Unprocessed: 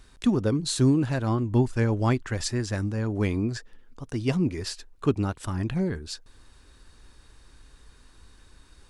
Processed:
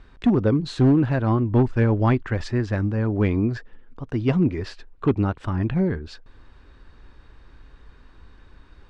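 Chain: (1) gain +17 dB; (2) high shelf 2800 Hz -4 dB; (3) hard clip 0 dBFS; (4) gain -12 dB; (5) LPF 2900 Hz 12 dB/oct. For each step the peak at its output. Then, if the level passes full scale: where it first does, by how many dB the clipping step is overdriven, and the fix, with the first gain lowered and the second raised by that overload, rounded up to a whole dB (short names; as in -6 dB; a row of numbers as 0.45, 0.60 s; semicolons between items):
+7.0, +7.0, 0.0, -12.0, -12.0 dBFS; step 1, 7.0 dB; step 1 +10 dB, step 4 -5 dB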